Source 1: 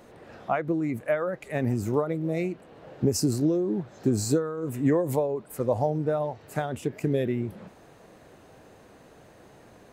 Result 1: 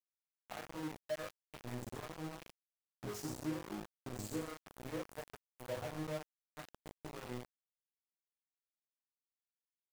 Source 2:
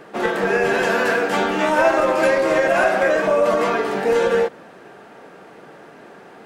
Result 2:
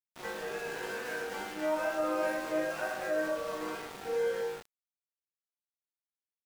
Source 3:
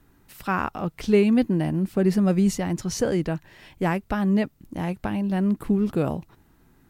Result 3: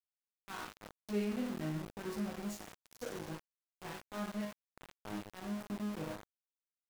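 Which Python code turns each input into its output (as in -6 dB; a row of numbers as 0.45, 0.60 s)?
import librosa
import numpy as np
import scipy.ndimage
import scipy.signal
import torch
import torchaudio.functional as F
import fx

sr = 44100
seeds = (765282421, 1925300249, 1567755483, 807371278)

y = fx.resonator_bank(x, sr, root=44, chord='minor', decay_s=0.73)
y = np.where(np.abs(y) >= 10.0 ** (-41.0 / 20.0), y, 0.0)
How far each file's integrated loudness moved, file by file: -18.0, -16.0, -18.0 LU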